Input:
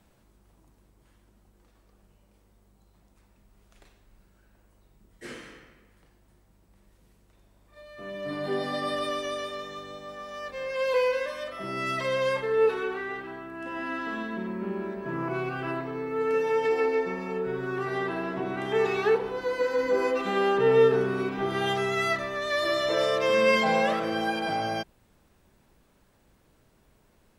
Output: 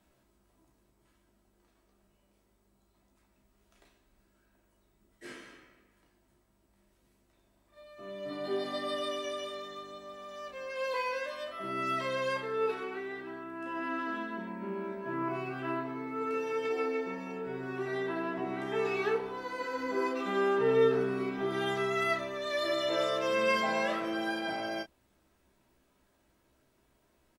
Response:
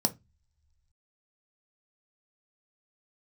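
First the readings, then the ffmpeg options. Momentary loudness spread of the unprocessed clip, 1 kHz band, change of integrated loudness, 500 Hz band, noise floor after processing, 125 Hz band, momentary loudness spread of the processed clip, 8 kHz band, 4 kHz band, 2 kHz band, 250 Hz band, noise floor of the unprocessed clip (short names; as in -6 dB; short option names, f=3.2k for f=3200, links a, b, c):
15 LU, -5.0 dB, -5.5 dB, -6.5 dB, -71 dBFS, -7.5 dB, 14 LU, n/a, -5.0 dB, -5.5 dB, -4.0 dB, -63 dBFS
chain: -af "lowshelf=f=96:g=-7.5,aecho=1:1:3.1:0.32,aecho=1:1:15|31:0.501|0.398,volume=-7dB"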